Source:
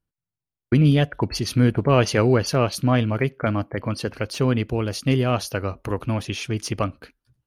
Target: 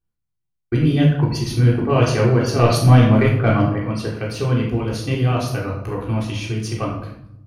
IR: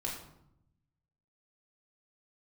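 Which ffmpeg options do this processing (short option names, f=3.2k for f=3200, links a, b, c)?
-filter_complex "[0:a]asettb=1/sr,asplit=3[a][b][c];[a]atrim=end=2.594[d];[b]atrim=start=2.59:end=3.73,asetpts=PTS-STARTPTS,afade=t=in:d=0.004:c=qsin,afade=t=out:st=1.136:d=0.004:c=qsin,acontrast=67[e];[c]atrim=start=3.726[f];[d][e]acrossfade=d=0.004:c1=hsin:c2=qsin[g];[g][f]acrossfade=d=0.004:c1=qsin:c2=hsin[h];[1:a]atrim=start_sample=2205[i];[h][i]afir=irnorm=-1:irlink=0,volume=-2dB"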